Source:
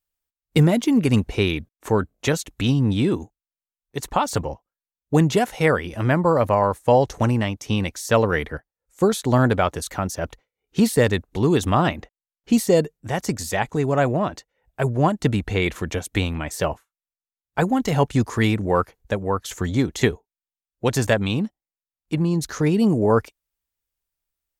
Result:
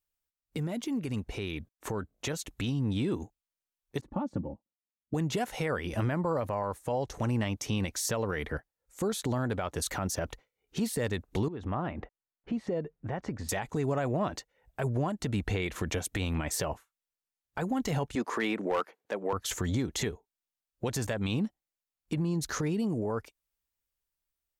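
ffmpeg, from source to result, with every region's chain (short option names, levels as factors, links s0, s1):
-filter_complex "[0:a]asettb=1/sr,asplit=3[s0][s1][s2];[s0]atrim=end=4.014[s3];[s1]atrim=start=4.01:end=5.14,asetpts=PTS-STARTPTS,afade=t=in:d=0.004:c=qsin,afade=t=out:st=1.126:d=0.004:c=qsin,bandpass=f=180:t=q:w=2,aecho=1:1:3.5:0.57,atrim=end_sample=49833[s4];[s2]atrim=start=5.136[s5];[s3][s4]acrossfade=d=0.004:c1=hsin:c2=qsin[s6];[s6][s5]acrossfade=d=0.004:c1=qsin:c2=hsin,asettb=1/sr,asplit=3[s7][s8][s9];[s7]atrim=end=11.484[s10];[s8]atrim=start=11.48:end=13.49,asetpts=PTS-STARTPTS,afade=t=in:d=0.004:c=qsin,afade=t=out:st=2.006:d=0.004:c=qsin,lowpass=1800,acompressor=threshold=0.02:ratio=3:attack=3.2:release=140:knee=1:detection=peak[s11];[s9]atrim=start=13.486[s12];[s10][s11]acrossfade=d=0.004:c1=hsin:c2=qsin[s13];[s13][s12]acrossfade=d=0.004:c1=qsin:c2=hsin,asettb=1/sr,asplit=3[s14][s15][s16];[s14]atrim=end=18.154[s17];[s15]atrim=start=18.15:end=19.33,asetpts=PTS-STARTPTS,afade=t=in:d=0.004:c=qsin,afade=t=out:st=1.176:d=0.004:c=qsin,highpass=f=190:w=0.5412,highpass=f=190:w=1.3066,bass=f=250:g=-10,treble=f=4000:g=-10,asoftclip=type=hard:threshold=0.178[s18];[s16]atrim=start=19.326[s19];[s17][s18]acrossfade=d=0.004:c1=hsin:c2=qsin[s20];[s20][s19]acrossfade=d=0.004:c1=qsin:c2=hsin,acompressor=threshold=0.0562:ratio=12,alimiter=limit=0.0794:level=0:latency=1:release=46,dynaudnorm=f=570:g=9:m=1.58,volume=0.668"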